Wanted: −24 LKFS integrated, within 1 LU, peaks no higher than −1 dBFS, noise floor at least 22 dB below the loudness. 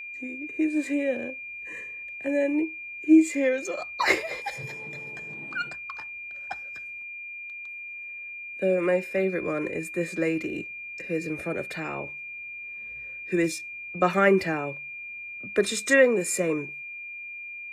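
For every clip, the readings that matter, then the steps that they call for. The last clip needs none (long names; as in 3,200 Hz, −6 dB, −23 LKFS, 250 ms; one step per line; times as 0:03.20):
interfering tone 2,400 Hz; level of the tone −36 dBFS; integrated loudness −28.0 LKFS; sample peak −7.5 dBFS; target loudness −24.0 LKFS
→ notch filter 2,400 Hz, Q 30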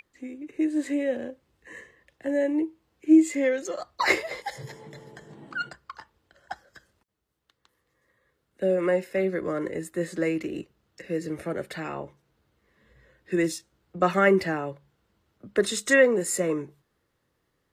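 interfering tone none found; integrated loudness −26.0 LKFS; sample peak −7.0 dBFS; target loudness −24.0 LKFS
→ level +2 dB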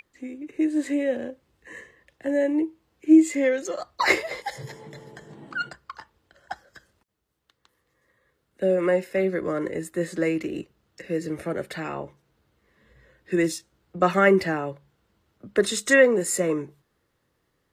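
integrated loudness −24.0 LKFS; sample peak −5.0 dBFS; background noise floor −73 dBFS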